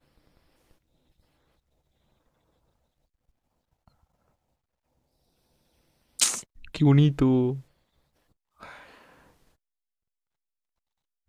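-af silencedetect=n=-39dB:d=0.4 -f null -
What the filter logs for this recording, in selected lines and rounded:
silence_start: 0.00
silence_end: 6.19 | silence_duration: 6.19
silence_start: 7.60
silence_end: 8.63 | silence_duration: 1.02
silence_start: 8.83
silence_end: 11.29 | silence_duration: 2.45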